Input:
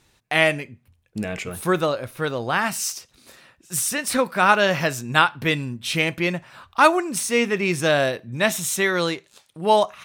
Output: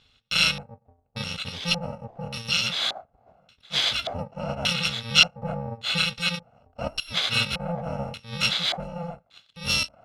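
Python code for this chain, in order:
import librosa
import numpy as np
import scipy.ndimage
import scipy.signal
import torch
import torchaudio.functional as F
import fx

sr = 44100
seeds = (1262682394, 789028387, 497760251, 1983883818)

y = fx.bit_reversed(x, sr, seeds[0], block=128)
y = fx.filter_lfo_lowpass(y, sr, shape='square', hz=0.86, low_hz=720.0, high_hz=3600.0, q=5.5)
y = F.gain(torch.from_numpy(y), -1.0).numpy()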